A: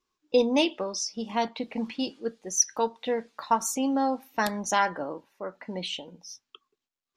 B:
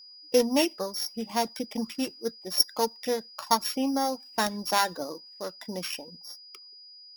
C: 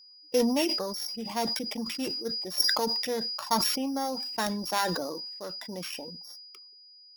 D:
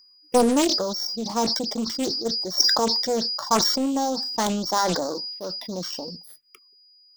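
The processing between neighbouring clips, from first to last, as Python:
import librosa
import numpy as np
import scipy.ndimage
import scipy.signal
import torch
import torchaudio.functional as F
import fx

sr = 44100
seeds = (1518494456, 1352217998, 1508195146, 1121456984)

y1 = np.r_[np.sort(x[:len(x) // 8 * 8].reshape(-1, 8), axis=1).ravel(), x[len(x) // 8 * 8:]]
y1 = fx.dereverb_blind(y1, sr, rt60_s=0.63)
y1 = y1 + 10.0 ** (-47.0 / 20.0) * np.sin(2.0 * np.pi * 4900.0 * np.arange(len(y1)) / sr)
y2 = fx.sustainer(y1, sr, db_per_s=31.0)
y2 = F.gain(torch.from_numpy(y2), -4.0).numpy()
y3 = fx.env_phaser(y2, sr, low_hz=560.0, high_hz=2600.0, full_db=-33.0)
y3 = fx.doppler_dist(y3, sr, depth_ms=0.86)
y3 = F.gain(torch.from_numpy(y3), 7.5).numpy()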